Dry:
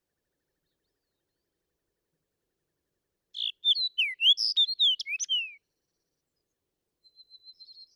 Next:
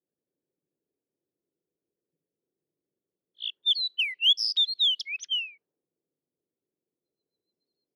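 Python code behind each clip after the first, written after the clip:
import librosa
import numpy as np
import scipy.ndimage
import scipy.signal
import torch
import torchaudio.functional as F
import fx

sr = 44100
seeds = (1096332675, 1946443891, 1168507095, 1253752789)

y = fx.env_lowpass(x, sr, base_hz=420.0, full_db=-24.0)
y = scipy.signal.sosfilt(scipy.signal.butter(2, 210.0, 'highpass', fs=sr, output='sos'), y)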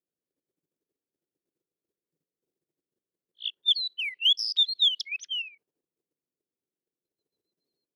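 y = fx.level_steps(x, sr, step_db=11)
y = F.gain(torch.from_numpy(y), 3.0).numpy()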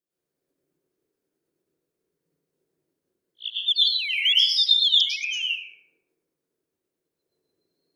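y = fx.rev_plate(x, sr, seeds[0], rt60_s=1.2, hf_ratio=0.35, predelay_ms=90, drr_db=-9.0)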